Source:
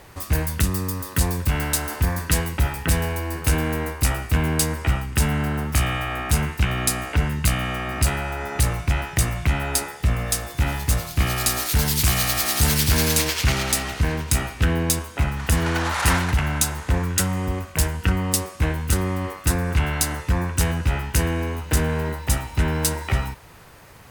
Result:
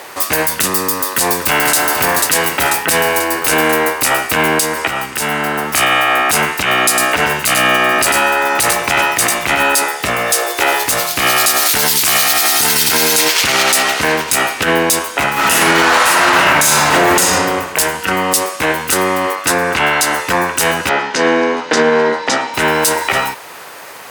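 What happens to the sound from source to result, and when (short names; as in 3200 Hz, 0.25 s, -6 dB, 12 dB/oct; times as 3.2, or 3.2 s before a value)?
0.92–1.81 echo throw 0.49 s, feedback 55%, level -9 dB
4.6–5.74 compressor 2.5:1, threshold -24 dBFS
6.88–9.82 echo 97 ms -5.5 dB
10.33–10.86 resonant low shelf 290 Hz -9 dB, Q 3
12.26–13.3 notch comb 570 Hz
15.32–17.18 reverb throw, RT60 1.5 s, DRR -8.5 dB
19.35–20.13 high shelf 10000 Hz -8.5 dB
20.89–22.54 speaker cabinet 180–5800 Hz, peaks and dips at 240 Hz +8 dB, 470 Hz +4 dB, 2700 Hz -5 dB
whole clip: HPF 440 Hz 12 dB/oct; maximiser +17.5 dB; gain -1 dB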